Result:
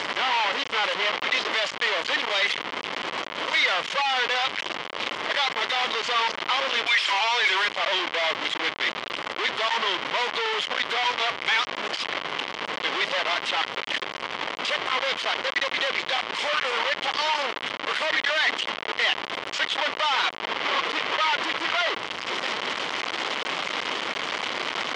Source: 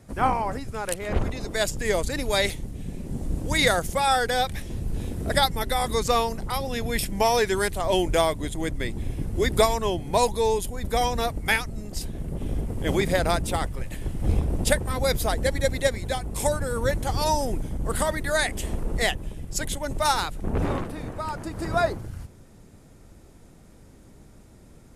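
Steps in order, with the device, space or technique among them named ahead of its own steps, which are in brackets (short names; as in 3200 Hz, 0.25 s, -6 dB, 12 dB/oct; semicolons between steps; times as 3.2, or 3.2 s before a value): reverb removal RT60 0.71 s; 6.85–7.64 HPF 1300 Hz -> 410 Hz 24 dB/oct; home computer beeper (infinite clipping; speaker cabinet 650–4700 Hz, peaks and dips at 720 Hz -3 dB, 1100 Hz +4 dB, 2100 Hz +6 dB, 3100 Hz +8 dB); gain +4 dB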